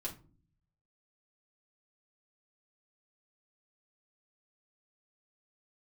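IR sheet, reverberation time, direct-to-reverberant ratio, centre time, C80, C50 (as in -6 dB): no single decay rate, -3.0 dB, 16 ms, 19.0 dB, 12.5 dB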